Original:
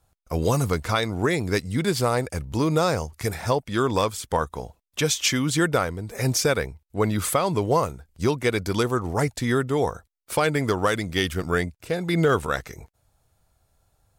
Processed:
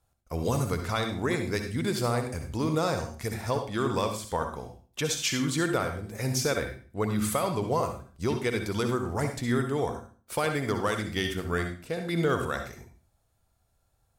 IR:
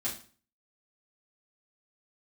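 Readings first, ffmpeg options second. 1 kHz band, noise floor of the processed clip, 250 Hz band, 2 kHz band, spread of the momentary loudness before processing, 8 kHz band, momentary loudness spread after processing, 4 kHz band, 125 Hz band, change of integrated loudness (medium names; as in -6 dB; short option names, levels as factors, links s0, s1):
-5.5 dB, -71 dBFS, -4.5 dB, -5.5 dB, 8 LU, -5.5 dB, 7 LU, -5.5 dB, -5.0 dB, -5.0 dB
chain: -filter_complex "[0:a]asplit=2[s0][s1];[1:a]atrim=start_sample=2205,adelay=58[s2];[s1][s2]afir=irnorm=-1:irlink=0,volume=0.355[s3];[s0][s3]amix=inputs=2:normalize=0,volume=0.473"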